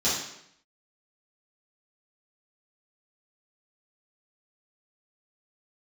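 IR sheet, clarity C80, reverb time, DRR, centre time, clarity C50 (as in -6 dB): 5.5 dB, 0.75 s, -11.5 dB, 54 ms, 1.5 dB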